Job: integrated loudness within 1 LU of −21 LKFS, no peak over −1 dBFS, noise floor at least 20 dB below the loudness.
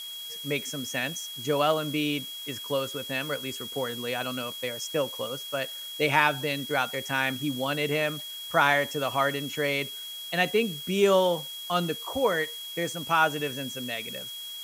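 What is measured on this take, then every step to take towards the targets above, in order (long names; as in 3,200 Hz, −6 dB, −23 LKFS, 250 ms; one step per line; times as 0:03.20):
interfering tone 3,300 Hz; level of the tone −37 dBFS; background noise floor −39 dBFS; target noise floor −48 dBFS; integrated loudness −28.0 LKFS; sample peak −6.5 dBFS; target loudness −21.0 LKFS
→ notch filter 3,300 Hz, Q 30
noise reduction from a noise print 9 dB
level +7 dB
brickwall limiter −1 dBFS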